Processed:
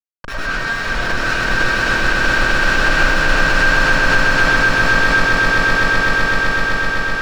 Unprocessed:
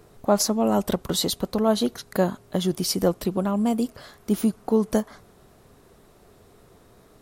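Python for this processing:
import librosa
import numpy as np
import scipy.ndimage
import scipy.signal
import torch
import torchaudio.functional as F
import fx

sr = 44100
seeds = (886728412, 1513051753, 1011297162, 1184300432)

y = fx.bit_reversed(x, sr, seeds[0], block=64)
y = fx.dereverb_blind(y, sr, rt60_s=0.5)
y = fx.rider(y, sr, range_db=5, speed_s=2.0)
y = fx.leveller(y, sr, passes=3)
y = fx.highpass_res(y, sr, hz=1500.0, q=9.1)
y = fx.schmitt(y, sr, flips_db=-21.0)
y = fx.air_absorb(y, sr, metres=160.0)
y = fx.echo_swell(y, sr, ms=127, loudest=8, wet_db=-4.0)
y = fx.rev_freeverb(y, sr, rt60_s=0.74, hf_ratio=0.45, predelay_ms=65, drr_db=-9.0)
y = fx.pre_swell(y, sr, db_per_s=72.0)
y = y * 10.0 ** (-9.5 / 20.0)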